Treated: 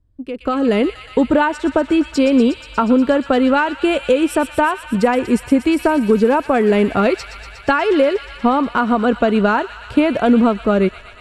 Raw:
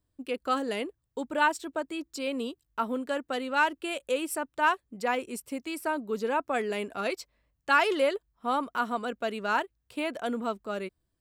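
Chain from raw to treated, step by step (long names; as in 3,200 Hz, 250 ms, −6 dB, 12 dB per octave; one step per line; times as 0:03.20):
downward compressor, threshold −32 dBFS, peak gain reduction 14 dB
elliptic low-pass filter 12,000 Hz, stop band 40 dB
RIAA equalisation playback
on a send: delay with a high-pass on its return 120 ms, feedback 84%, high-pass 2,100 Hz, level −9 dB
on the sum: automatic gain control gain up to 16 dB
level +3.5 dB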